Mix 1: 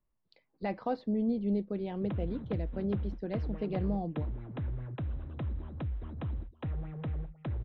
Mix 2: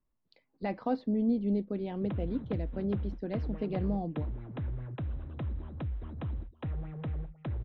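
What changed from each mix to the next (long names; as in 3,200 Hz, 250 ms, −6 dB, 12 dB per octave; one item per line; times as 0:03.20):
speech: add parametric band 260 Hz +7 dB 0.25 octaves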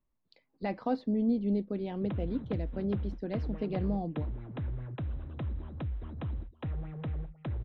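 master: add high-shelf EQ 7,600 Hz +10 dB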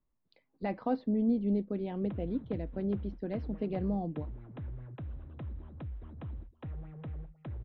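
background −5.5 dB
master: add high-frequency loss of the air 180 metres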